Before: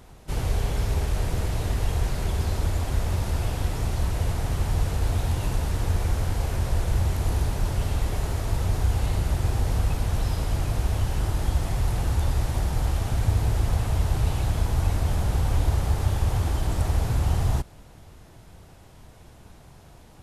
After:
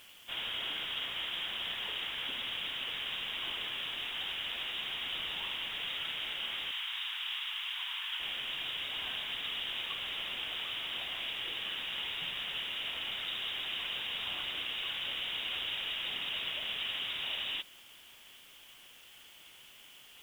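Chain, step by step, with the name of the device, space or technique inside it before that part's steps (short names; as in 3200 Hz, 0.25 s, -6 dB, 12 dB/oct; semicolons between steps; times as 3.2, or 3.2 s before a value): scrambled radio voice (BPF 390–3100 Hz; inverted band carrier 3700 Hz; white noise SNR 22 dB); 6.71–8.2 steep high-pass 840 Hz 48 dB/oct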